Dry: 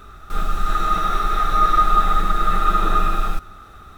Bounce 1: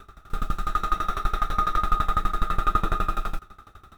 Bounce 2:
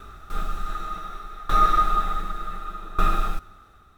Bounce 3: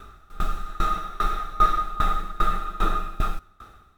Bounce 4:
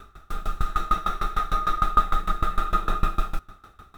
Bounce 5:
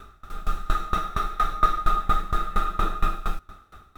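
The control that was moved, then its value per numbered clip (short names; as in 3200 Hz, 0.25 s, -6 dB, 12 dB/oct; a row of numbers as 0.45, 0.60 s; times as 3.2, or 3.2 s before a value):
dB-ramp tremolo, rate: 12, 0.67, 2.5, 6.6, 4.3 Hz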